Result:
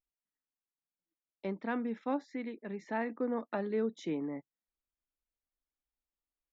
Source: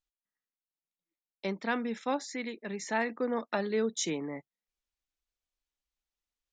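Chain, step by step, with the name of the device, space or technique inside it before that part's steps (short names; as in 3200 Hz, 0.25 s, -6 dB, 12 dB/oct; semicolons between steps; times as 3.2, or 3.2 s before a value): phone in a pocket (LPF 3900 Hz 12 dB/oct; bell 280 Hz +4.5 dB 0.46 oct; high shelf 2300 Hz -12 dB); gain -3 dB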